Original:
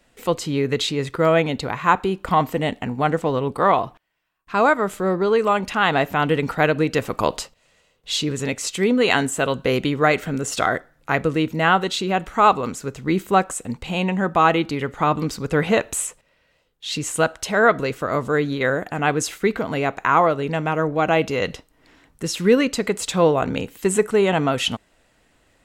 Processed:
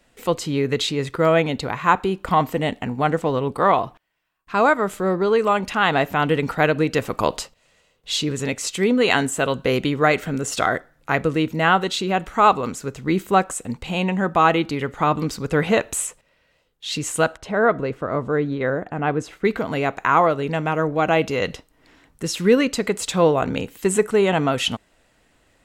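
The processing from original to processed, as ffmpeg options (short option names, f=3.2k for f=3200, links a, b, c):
-filter_complex "[0:a]asettb=1/sr,asplit=3[a][b][c];[a]atrim=end=17.374[d];[b]atrim=start=17.37:end=19.45,asetpts=PTS-STARTPTS,afade=t=in:d=0.004:c=qsin,afade=t=out:st=2.076:d=0.004:c=qsin,lowpass=f=1.1k:p=1[e];[c]atrim=start=19.446[f];[d][e]acrossfade=d=0.004:c1=hsin:c2=qsin[g];[g][f]acrossfade=d=0.004:c1=qsin:c2=hsin"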